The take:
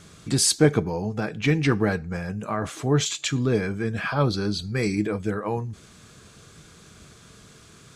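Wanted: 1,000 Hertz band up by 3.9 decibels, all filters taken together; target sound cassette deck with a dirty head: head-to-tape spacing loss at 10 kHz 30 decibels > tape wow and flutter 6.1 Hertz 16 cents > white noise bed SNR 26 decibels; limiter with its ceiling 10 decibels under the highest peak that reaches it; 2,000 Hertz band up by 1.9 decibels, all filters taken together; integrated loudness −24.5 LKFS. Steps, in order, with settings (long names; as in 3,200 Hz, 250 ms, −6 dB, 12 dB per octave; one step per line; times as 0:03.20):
parametric band 1,000 Hz +7 dB
parametric band 2,000 Hz +7 dB
brickwall limiter −12 dBFS
head-to-tape spacing loss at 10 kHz 30 dB
tape wow and flutter 6.1 Hz 16 cents
white noise bed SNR 26 dB
level +3 dB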